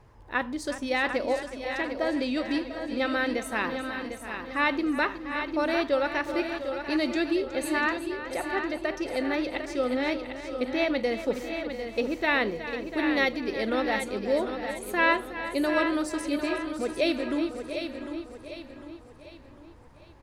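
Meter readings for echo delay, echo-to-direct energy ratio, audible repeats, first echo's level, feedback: 367 ms, -5.0 dB, 10, -12.5 dB, no regular repeats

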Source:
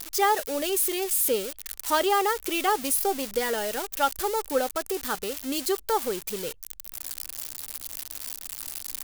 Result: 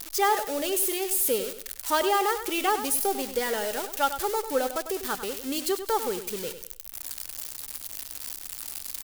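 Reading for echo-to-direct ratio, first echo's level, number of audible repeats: -10.0 dB, -10.5 dB, 3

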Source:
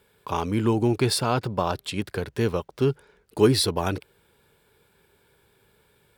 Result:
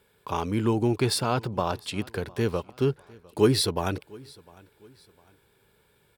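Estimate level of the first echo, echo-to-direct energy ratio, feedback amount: -24.0 dB, -23.5 dB, 38%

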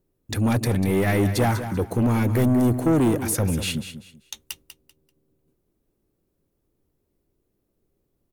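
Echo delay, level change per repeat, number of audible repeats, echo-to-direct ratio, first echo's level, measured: 194 ms, -11.5 dB, 3, -10.5 dB, -11.0 dB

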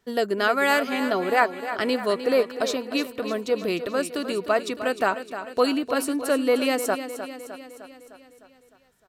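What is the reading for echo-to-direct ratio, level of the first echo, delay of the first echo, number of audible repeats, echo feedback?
-9.0 dB, -11.0 dB, 305 ms, 6, 58%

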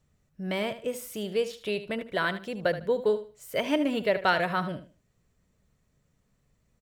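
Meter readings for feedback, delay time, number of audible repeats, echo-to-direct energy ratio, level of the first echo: 24%, 76 ms, 2, -12.0 dB, -12.5 dB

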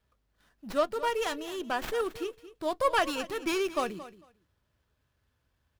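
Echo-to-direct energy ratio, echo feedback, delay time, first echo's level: -15.5 dB, 16%, 224 ms, -15.5 dB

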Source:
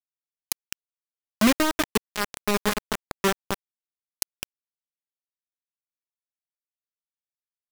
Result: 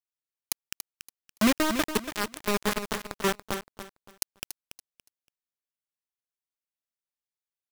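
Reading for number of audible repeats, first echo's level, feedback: 3, -10.0 dB, 25%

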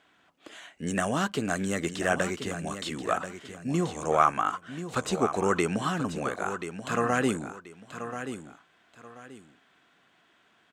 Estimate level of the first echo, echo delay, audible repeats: -10.0 dB, 1033 ms, 2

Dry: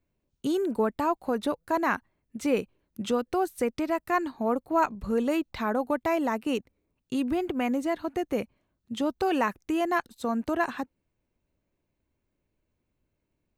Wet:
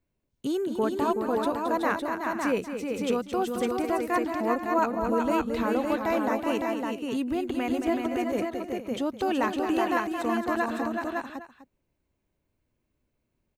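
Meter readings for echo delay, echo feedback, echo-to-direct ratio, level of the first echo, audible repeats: 220 ms, no regular repeats, -0.5 dB, -8.5 dB, 5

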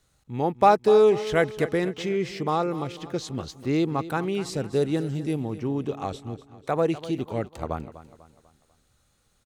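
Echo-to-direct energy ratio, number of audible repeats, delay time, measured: -14.0 dB, 3, 247 ms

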